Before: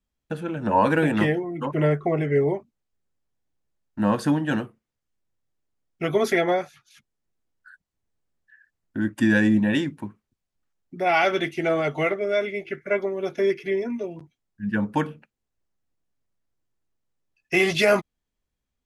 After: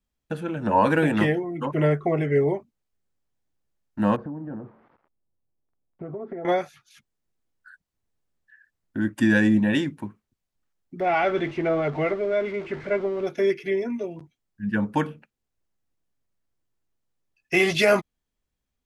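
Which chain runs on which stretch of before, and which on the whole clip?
0:04.16–0:06.45: spike at every zero crossing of −22.5 dBFS + Bessel low-pass filter 760 Hz, order 4 + downward compressor 5 to 1, threshold −32 dBFS
0:11.00–0:13.27: converter with a step at zero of −31.5 dBFS + head-to-tape spacing loss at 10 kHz 29 dB
whole clip: no processing

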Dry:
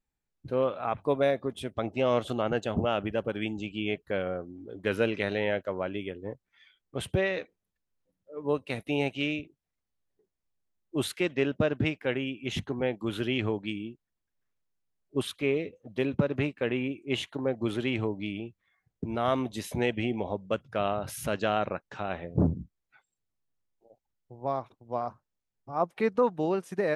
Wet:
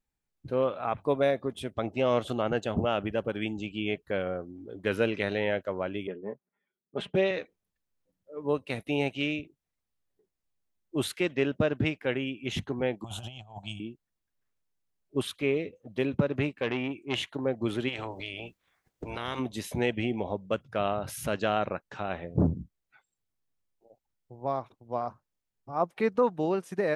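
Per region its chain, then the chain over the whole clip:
0:06.07–0:07.31: low-pass that shuts in the quiet parts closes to 340 Hz, open at −26.5 dBFS + high-pass filter 160 Hz + comb filter 4.9 ms, depth 61%
0:13.04–0:13.80: drawn EQ curve 140 Hz 0 dB, 300 Hz −22 dB, 450 Hz −21 dB, 710 Hz +12 dB, 1,900 Hz −21 dB, 3,000 Hz −1 dB, 4,700 Hz −7 dB, 7,000 Hz +8 dB, 13,000 Hz −4 dB + compressor whose output falls as the input rises −40 dBFS, ratio −0.5
0:16.49–0:17.29: dynamic equaliser 1,800 Hz, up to +4 dB, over −48 dBFS, Q 0.89 + saturating transformer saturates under 1,300 Hz
0:17.88–0:19.38: ceiling on every frequency bin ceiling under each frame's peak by 20 dB + notch filter 210 Hz, Q 6.2 + downward compressor 2 to 1, threshold −35 dBFS
whole clip: no processing

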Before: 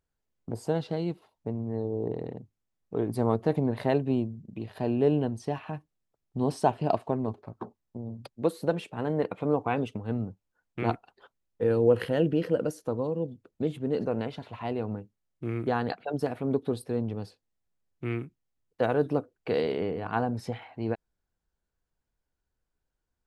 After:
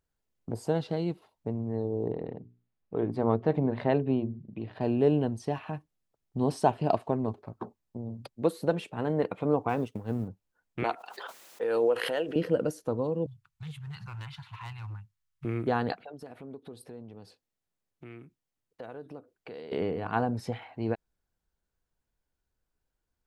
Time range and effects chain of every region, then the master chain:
0:02.12–0:04.81: low-pass filter 3,200 Hz + mains-hum notches 60/120/180/240/300/360/420 Hz
0:09.69–0:10.28: mu-law and A-law mismatch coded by A + dynamic equaliser 2,700 Hz, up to −5 dB, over −49 dBFS, Q 0.84
0:10.84–0:12.36: high-pass filter 580 Hz + background raised ahead of every attack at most 29 dB per second
0:13.26–0:15.45: inverse Chebyshev band-stop filter 230–620 Hz + gain into a clipping stage and back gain 35.5 dB
0:16.05–0:19.72: downward compressor 3 to 1, threshold −44 dBFS + low-shelf EQ 100 Hz −9.5 dB
whole clip: no processing

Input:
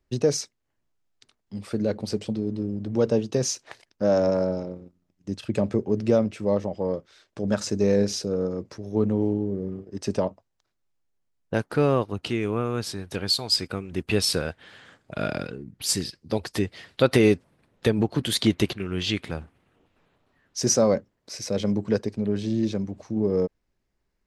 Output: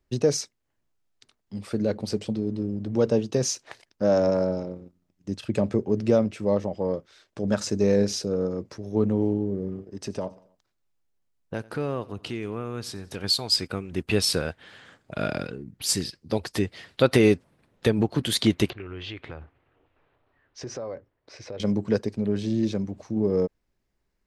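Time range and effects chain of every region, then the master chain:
0:09.81–0:13.24: downward compressor 1.5 to 1, threshold −37 dBFS + repeating echo 91 ms, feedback 50%, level −22 dB
0:18.70–0:21.60: low-pass filter 2,700 Hz + parametric band 200 Hz −14.5 dB 0.51 octaves + downward compressor 4 to 1, threshold −33 dBFS
whole clip: no processing

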